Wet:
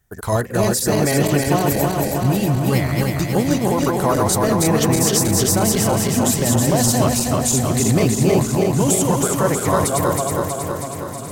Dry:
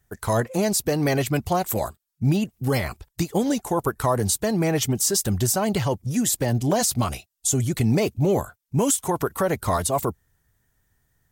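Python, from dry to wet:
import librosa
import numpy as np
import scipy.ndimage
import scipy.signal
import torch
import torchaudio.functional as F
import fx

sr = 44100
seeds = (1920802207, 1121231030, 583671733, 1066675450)

p1 = fx.reverse_delay_fb(x, sr, ms=160, feedback_pct=80, wet_db=-2)
p2 = p1 + fx.echo_alternate(p1, sr, ms=661, hz=1400.0, feedback_pct=74, wet_db=-13.0, dry=0)
y = F.gain(torch.from_numpy(p2), 1.5).numpy()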